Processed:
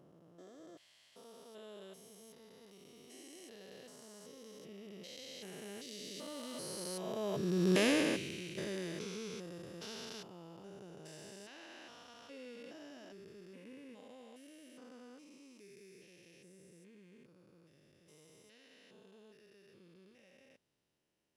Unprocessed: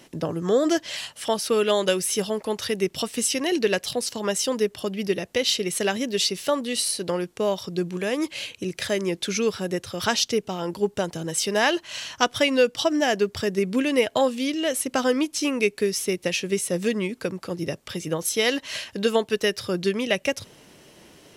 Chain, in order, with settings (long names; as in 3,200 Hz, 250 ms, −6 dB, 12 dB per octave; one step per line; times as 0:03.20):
spectrum averaged block by block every 400 ms
source passing by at 0:07.82, 11 m/s, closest 1.8 metres
level +5 dB